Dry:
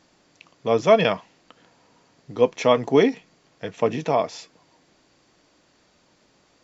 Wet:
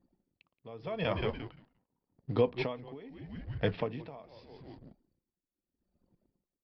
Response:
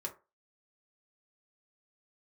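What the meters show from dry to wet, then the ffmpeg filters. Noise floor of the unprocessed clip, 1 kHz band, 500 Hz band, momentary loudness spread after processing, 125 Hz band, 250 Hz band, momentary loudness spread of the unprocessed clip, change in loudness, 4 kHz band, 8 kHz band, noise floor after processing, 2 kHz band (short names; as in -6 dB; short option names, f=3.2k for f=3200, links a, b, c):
-62 dBFS, -17.5 dB, -15.0 dB, 21 LU, -4.5 dB, -13.0 dB, 20 LU, -14.0 dB, -13.0 dB, n/a, under -85 dBFS, -12.0 dB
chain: -filter_complex "[0:a]asplit=5[a][b][c][d][e];[b]adelay=174,afreqshift=-110,volume=-13.5dB[f];[c]adelay=348,afreqshift=-220,volume=-20.8dB[g];[d]adelay=522,afreqshift=-330,volume=-28.2dB[h];[e]adelay=696,afreqshift=-440,volume=-35.5dB[i];[a][f][g][h][i]amix=inputs=5:normalize=0,acompressor=threshold=-19dB:ratio=6,alimiter=limit=-17dB:level=0:latency=1:release=354,equalizer=f=110:w=1.3:g=8,asplit=2[j][k];[1:a]atrim=start_sample=2205,asetrate=31311,aresample=44100[l];[k][l]afir=irnorm=-1:irlink=0,volume=-17.5dB[m];[j][m]amix=inputs=2:normalize=0,aresample=11025,aresample=44100,anlmdn=0.00398,aeval=exprs='val(0)*pow(10,-23*(0.5-0.5*cos(2*PI*0.82*n/s))/20)':c=same"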